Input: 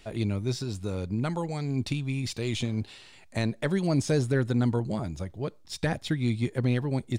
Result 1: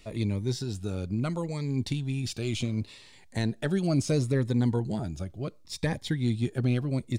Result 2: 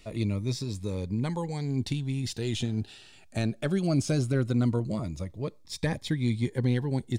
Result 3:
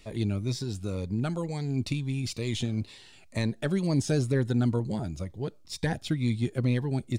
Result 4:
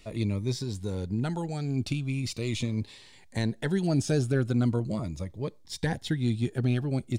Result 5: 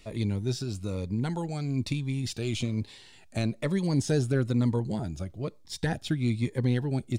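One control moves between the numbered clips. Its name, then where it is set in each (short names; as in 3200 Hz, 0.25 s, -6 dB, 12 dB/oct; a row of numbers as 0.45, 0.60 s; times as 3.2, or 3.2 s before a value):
cascading phaser, rate: 0.71, 0.2, 2.1, 0.4, 1.1 Hz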